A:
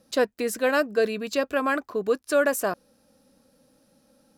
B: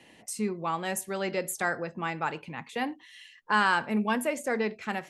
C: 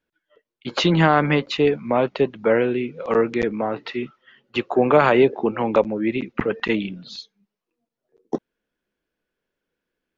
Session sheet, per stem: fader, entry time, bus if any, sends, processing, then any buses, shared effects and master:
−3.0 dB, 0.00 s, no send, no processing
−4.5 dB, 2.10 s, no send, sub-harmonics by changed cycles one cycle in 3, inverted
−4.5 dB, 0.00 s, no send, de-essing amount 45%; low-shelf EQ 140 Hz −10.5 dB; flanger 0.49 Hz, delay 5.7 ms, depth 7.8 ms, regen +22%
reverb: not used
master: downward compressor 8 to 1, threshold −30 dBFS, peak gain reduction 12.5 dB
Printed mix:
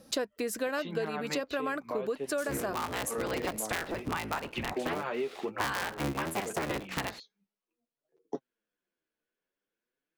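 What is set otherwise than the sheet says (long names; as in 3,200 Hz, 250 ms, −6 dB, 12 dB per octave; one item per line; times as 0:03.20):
stem A −3.0 dB → +5.0 dB
stem B −4.5 dB → +7.5 dB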